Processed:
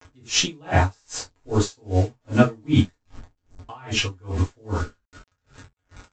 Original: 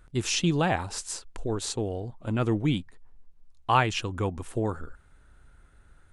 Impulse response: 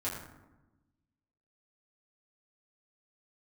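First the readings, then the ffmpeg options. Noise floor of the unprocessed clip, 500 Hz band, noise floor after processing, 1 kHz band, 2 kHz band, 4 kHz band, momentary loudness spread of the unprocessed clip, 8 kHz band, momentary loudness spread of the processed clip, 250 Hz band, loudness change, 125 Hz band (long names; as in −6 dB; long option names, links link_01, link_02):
−58 dBFS, +3.5 dB, −76 dBFS, −0.5 dB, +4.0 dB, +6.5 dB, 11 LU, +4.5 dB, 14 LU, +5.0 dB, +4.5 dB, +6.0 dB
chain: -filter_complex "[0:a]acontrast=51,aresample=16000,acrusher=bits=6:mix=0:aa=0.000001,aresample=44100,crystalizer=i=0.5:c=0[link_01];[1:a]atrim=start_sample=2205,atrim=end_sample=3969[link_02];[link_01][link_02]afir=irnorm=-1:irlink=0,aeval=exprs='val(0)*pow(10,-36*(0.5-0.5*cos(2*PI*2.5*n/s))/20)':channel_layout=same,volume=2.5dB"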